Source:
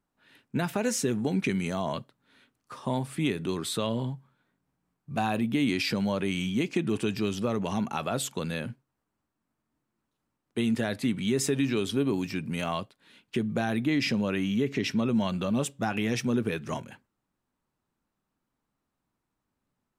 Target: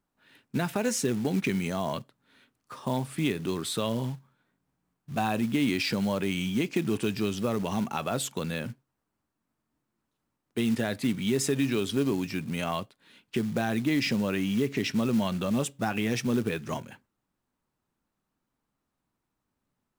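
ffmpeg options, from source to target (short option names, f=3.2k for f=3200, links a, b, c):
-af "acrusher=bits=5:mode=log:mix=0:aa=0.000001"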